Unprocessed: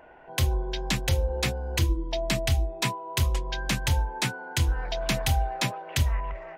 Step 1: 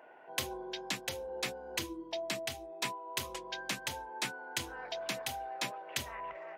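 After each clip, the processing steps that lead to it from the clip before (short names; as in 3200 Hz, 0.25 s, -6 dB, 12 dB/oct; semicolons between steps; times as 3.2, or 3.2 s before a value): HPF 290 Hz 12 dB/oct; vocal rider within 3 dB 0.5 s; gain -7 dB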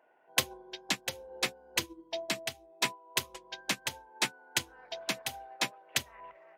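upward expander 2.5:1, over -44 dBFS; gain +9 dB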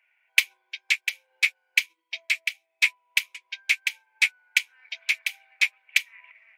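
resonant high-pass 2300 Hz, resonance Q 9.1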